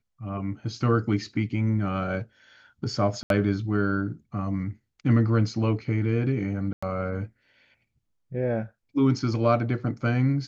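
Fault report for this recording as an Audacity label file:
3.230000	3.300000	drop-out 72 ms
6.730000	6.830000	drop-out 95 ms

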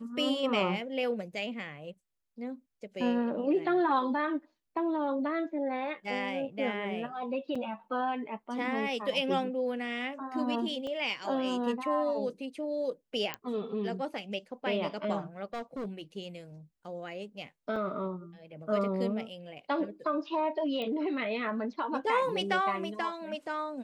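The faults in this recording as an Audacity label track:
7.550000	7.550000	drop-out 4.9 ms
10.870000	10.870000	drop-out 2.6 ms
13.340000	13.340000	click −17 dBFS
15.530000	16.010000	clipping −33 dBFS
17.760000	17.760000	drop-out 3 ms
20.820000	20.820000	click −25 dBFS

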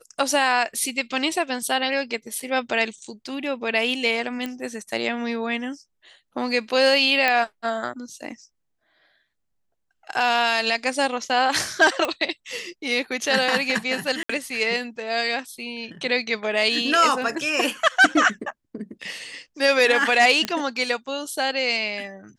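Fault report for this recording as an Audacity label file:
2.400000	2.400000	drop-out 4 ms
4.460000	4.460000	click −16 dBFS
7.280000	7.280000	click −7 dBFS
12.050000	12.050000	click −11 dBFS
14.230000	14.290000	drop-out 64 ms
20.450000	20.450000	click −9 dBFS

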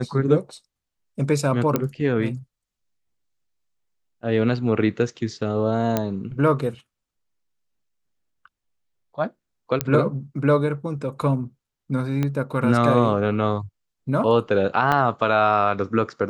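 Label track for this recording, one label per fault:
1.760000	1.760000	click −7 dBFS
5.970000	5.970000	click −7 dBFS
9.810000	9.810000	click −5 dBFS
12.230000	12.230000	click −12 dBFS
14.920000	14.920000	drop-out 3.8 ms

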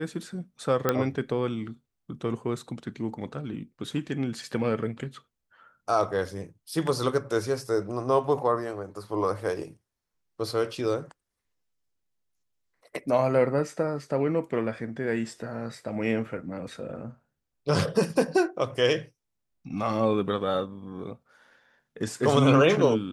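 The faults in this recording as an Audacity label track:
0.890000	0.890000	click −9 dBFS

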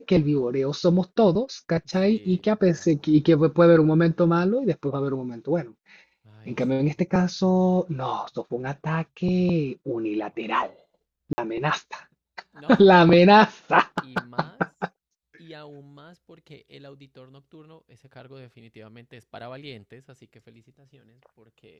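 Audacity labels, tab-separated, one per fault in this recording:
11.330000	11.380000	drop-out 50 ms
13.980000	14.180000	clipping −17.5 dBFS

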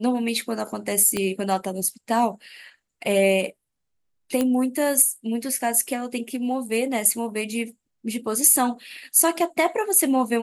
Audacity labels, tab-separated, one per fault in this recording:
1.170000	1.170000	click −11 dBFS
4.410000	4.410000	click −10 dBFS

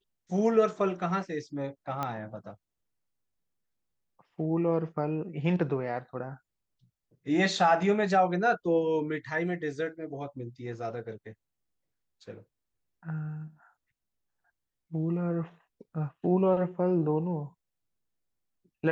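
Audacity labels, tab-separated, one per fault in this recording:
2.030000	2.030000	click −18 dBFS

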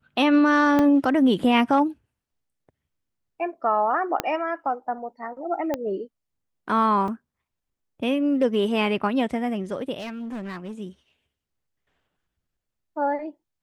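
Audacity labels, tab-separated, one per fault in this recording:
0.790000	0.790000	drop-out 2.7 ms
4.200000	4.200000	click −8 dBFS
5.740000	5.740000	click −13 dBFS
7.080000	7.080000	drop-out 2.6 ms
9.990000	10.720000	clipping −29.5 dBFS

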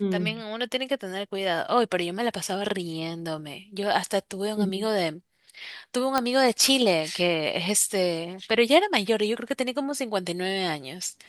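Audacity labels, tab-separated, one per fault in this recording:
6.180000	6.180000	click −9 dBFS

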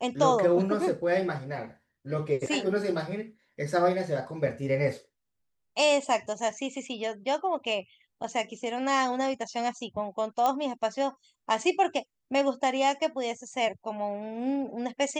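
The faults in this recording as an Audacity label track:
10.460000	10.460000	click −14 dBFS

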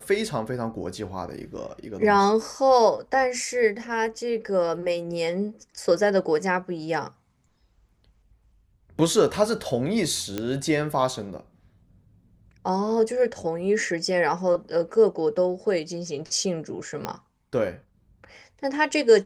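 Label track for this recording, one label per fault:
10.380000	10.380000	click −14 dBFS
17.050000	17.050000	click −13 dBFS

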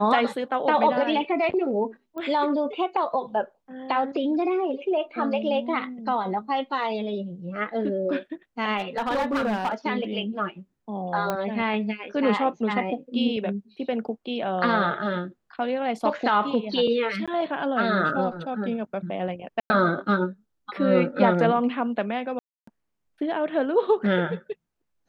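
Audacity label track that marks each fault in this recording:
2.180000	2.180000	click −24 dBFS
8.770000	9.740000	clipping −21 dBFS
11.300000	11.300000	click −12 dBFS
17.260000	17.280000	drop-out 16 ms
19.600000	19.700000	drop-out 100 ms
22.390000	22.670000	drop-out 284 ms

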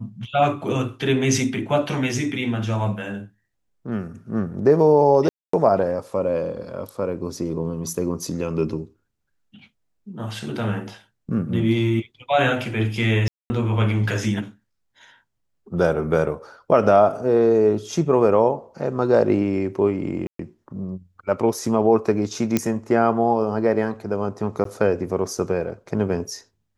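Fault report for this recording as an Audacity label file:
5.290000	5.530000	drop-out 244 ms
13.280000	13.500000	drop-out 220 ms
20.270000	20.390000	drop-out 123 ms
22.570000	22.570000	click −5 dBFS
24.640000	24.650000	drop-out 13 ms

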